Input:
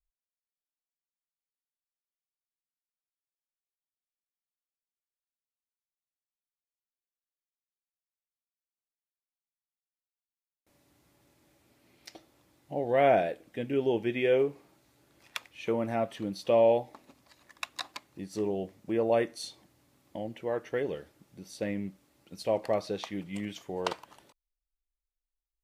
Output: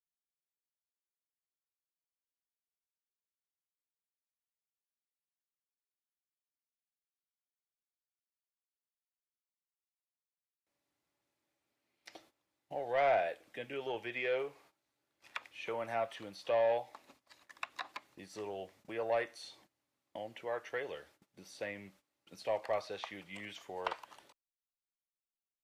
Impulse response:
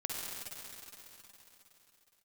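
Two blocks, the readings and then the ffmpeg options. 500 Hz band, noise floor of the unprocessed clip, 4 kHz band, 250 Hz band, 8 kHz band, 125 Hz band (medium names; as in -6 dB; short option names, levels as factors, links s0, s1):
-8.0 dB, under -85 dBFS, -6.0 dB, -16.5 dB, no reading, -15.5 dB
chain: -filter_complex "[0:a]acrossover=split=2700[s0][s1];[s1]acompressor=threshold=0.00316:ratio=4:attack=1:release=60[s2];[s0][s2]amix=inputs=2:normalize=0,asplit=2[s3][s4];[s4]highpass=f=720:p=1,volume=3.55,asoftclip=type=tanh:threshold=0.237[s5];[s3][s5]amix=inputs=2:normalize=0,lowpass=f=7000:p=1,volume=0.501,acrossover=split=110|490|4000[s6][s7][s8][s9];[s7]acompressor=threshold=0.00398:ratio=5[s10];[s6][s10][s8][s9]amix=inputs=4:normalize=0,agate=range=0.158:threshold=0.00141:ratio=16:detection=peak,volume=0.501"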